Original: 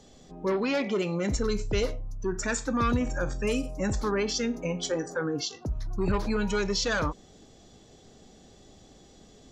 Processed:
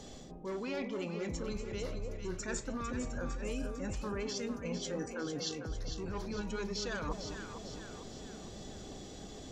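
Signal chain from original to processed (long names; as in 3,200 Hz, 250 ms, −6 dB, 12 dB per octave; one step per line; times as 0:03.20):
reversed playback
downward compressor 16 to 1, threshold −41 dBFS, peak gain reduction 20.5 dB
reversed playback
delay that swaps between a low-pass and a high-pass 226 ms, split 820 Hz, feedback 71%, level −4.5 dB
level +5 dB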